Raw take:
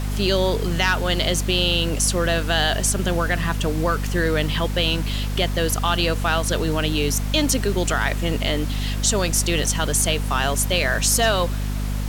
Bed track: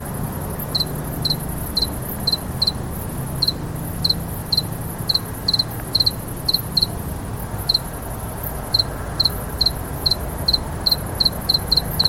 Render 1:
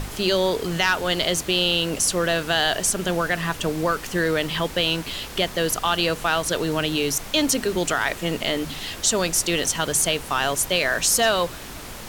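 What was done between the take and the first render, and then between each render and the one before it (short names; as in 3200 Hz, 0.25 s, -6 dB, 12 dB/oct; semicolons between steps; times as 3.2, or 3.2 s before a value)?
notches 50/100/150/200/250 Hz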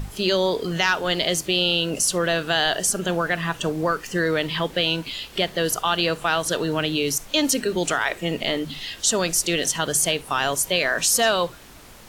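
noise print and reduce 9 dB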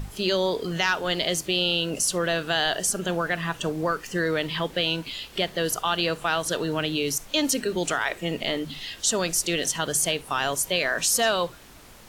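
gain -3 dB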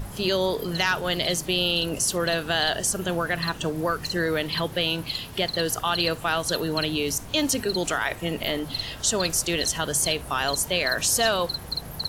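add bed track -13.5 dB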